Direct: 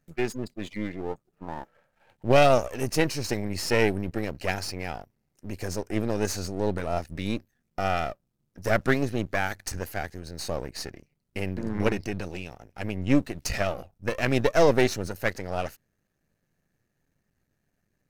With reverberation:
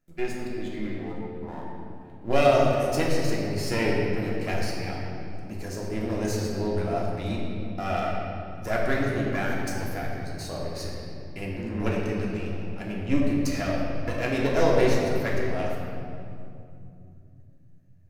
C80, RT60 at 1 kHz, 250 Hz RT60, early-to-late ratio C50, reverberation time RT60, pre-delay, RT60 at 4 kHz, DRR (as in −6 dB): 1.0 dB, 2.4 s, 4.2 s, 0.0 dB, 2.6 s, 3 ms, 1.7 s, −4.0 dB